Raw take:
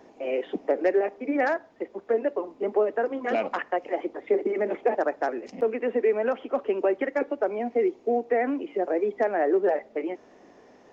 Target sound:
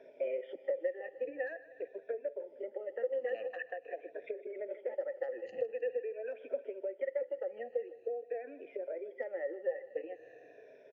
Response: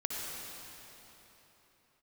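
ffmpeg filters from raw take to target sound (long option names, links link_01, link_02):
-filter_complex "[0:a]afftfilt=real='re*pow(10,16/40*sin(2*PI*(1.6*log(max(b,1)*sr/1024/100)/log(2)-(-0.46)*(pts-256)/sr)))':imag='im*pow(10,16/40*sin(2*PI*(1.6*log(max(b,1)*sr/1024/100)/log(2)-(-0.46)*(pts-256)/sr)))':win_size=1024:overlap=0.75,acompressor=threshold=-32dB:ratio=16,asplit=3[link_01][link_02][link_03];[link_01]bandpass=frequency=530:width_type=q:width=8,volume=0dB[link_04];[link_02]bandpass=frequency=1840:width_type=q:width=8,volume=-6dB[link_05];[link_03]bandpass=frequency=2480:width_type=q:width=8,volume=-9dB[link_06];[link_04][link_05][link_06]amix=inputs=3:normalize=0,lowshelf=frequency=160:width_type=q:width=3:gain=7,aecho=1:1:156|312|468|624|780:0.141|0.0791|0.0443|0.0248|0.0139,volume=5.5dB"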